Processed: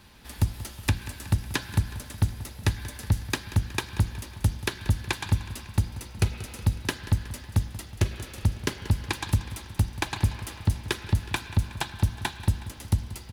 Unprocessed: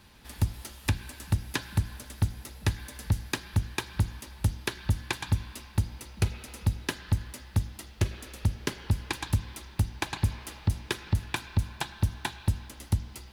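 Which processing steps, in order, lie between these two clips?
feedback delay 184 ms, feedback 57%, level -15.5 dB; trim +2.5 dB

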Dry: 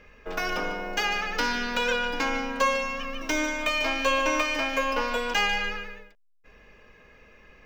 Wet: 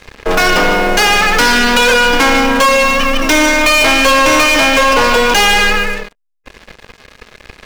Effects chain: waveshaping leveller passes 5; trim +5 dB

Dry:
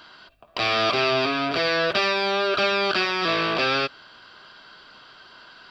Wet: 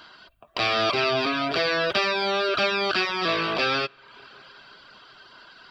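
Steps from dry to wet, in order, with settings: spring tank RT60 3.7 s, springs 32/45 ms, chirp 70 ms, DRR 18.5 dB; reverb removal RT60 0.62 s; 1.26–2.49 s: three bands compressed up and down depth 40%

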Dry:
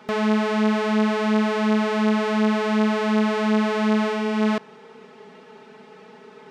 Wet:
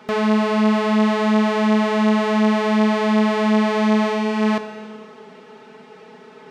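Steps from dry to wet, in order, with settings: plate-style reverb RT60 2.1 s, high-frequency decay 0.95×, DRR 8.5 dB; trim +2 dB

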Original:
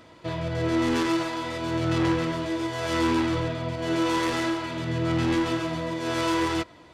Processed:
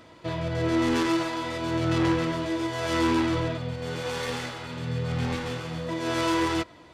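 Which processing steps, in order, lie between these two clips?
3.57–5.89 s: comb of notches 330 Hz

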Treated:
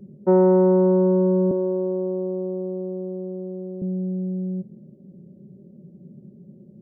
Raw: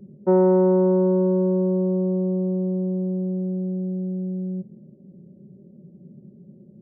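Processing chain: 1.51–3.82 s: high-pass 250 Hz 24 dB/octave; trim +1 dB

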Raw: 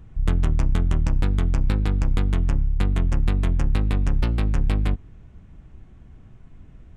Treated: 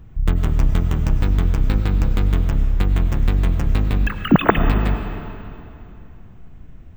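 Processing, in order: 4.07–4.57 s: formants replaced by sine waves; algorithmic reverb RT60 2.8 s, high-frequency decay 0.85×, pre-delay 60 ms, DRR 7 dB; careless resampling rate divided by 2×, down filtered, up hold; trim +2.5 dB

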